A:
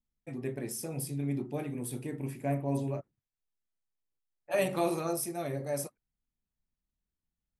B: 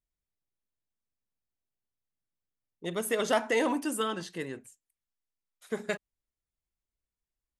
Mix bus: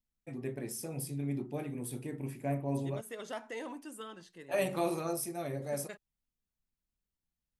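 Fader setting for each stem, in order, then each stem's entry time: -2.5 dB, -14.5 dB; 0.00 s, 0.00 s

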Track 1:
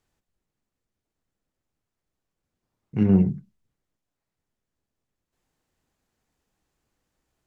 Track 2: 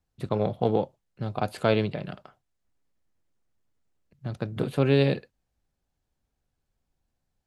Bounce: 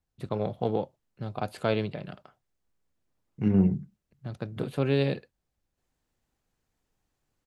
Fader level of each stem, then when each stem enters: -4.0 dB, -4.0 dB; 0.45 s, 0.00 s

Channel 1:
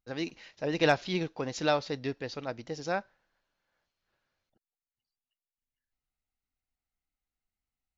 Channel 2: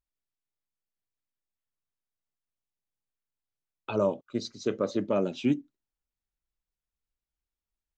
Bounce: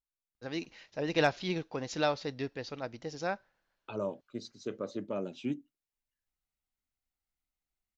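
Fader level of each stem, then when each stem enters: -2.5 dB, -9.0 dB; 0.35 s, 0.00 s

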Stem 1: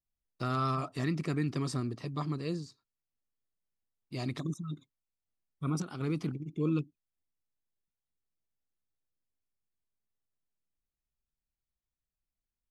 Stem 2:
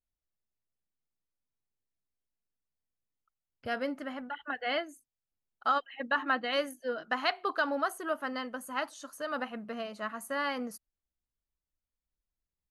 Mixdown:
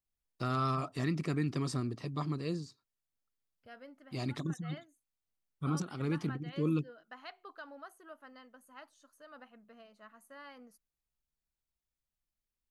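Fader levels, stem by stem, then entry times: -1.0 dB, -18.5 dB; 0.00 s, 0.00 s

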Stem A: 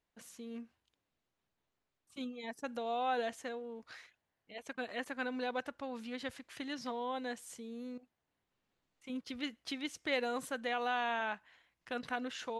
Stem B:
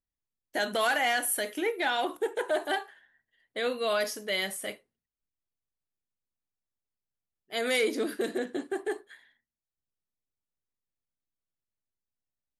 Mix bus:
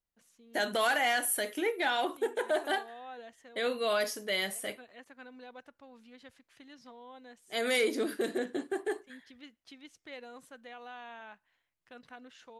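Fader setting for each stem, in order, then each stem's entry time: -12.0 dB, -1.5 dB; 0.00 s, 0.00 s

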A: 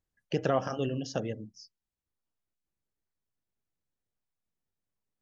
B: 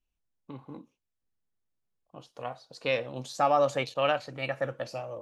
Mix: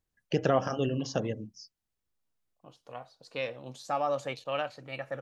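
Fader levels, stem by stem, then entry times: +2.0 dB, -6.0 dB; 0.00 s, 0.50 s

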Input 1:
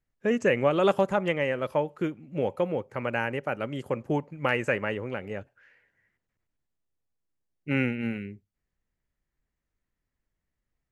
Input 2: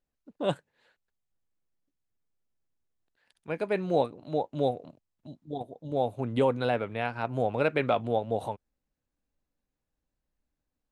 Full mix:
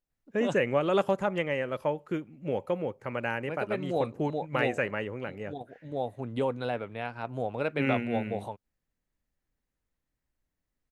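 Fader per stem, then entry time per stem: -3.0 dB, -4.5 dB; 0.10 s, 0.00 s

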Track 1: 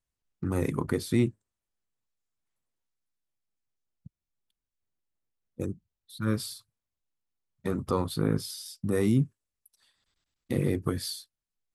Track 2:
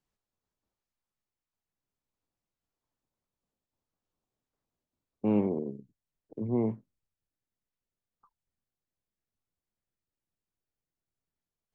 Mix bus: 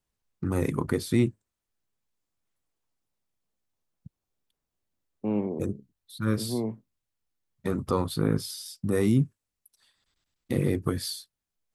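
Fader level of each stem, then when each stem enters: +1.5 dB, -1.5 dB; 0.00 s, 0.00 s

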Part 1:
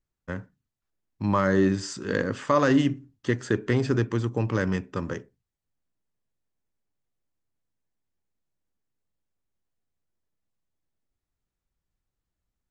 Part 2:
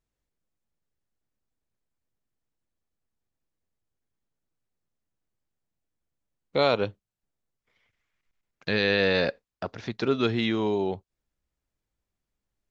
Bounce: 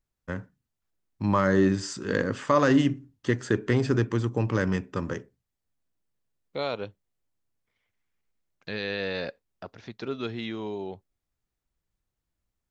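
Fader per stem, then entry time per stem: 0.0 dB, -8.0 dB; 0.00 s, 0.00 s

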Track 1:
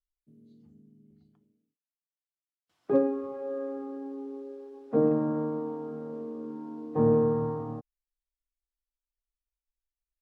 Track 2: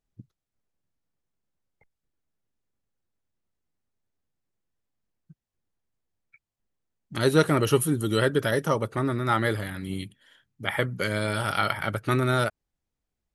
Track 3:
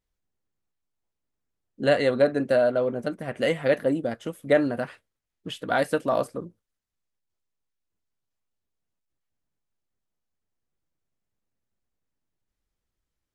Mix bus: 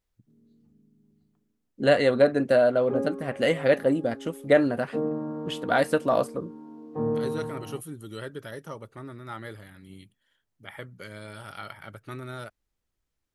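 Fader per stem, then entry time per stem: -4.5 dB, -14.5 dB, +1.0 dB; 0.00 s, 0.00 s, 0.00 s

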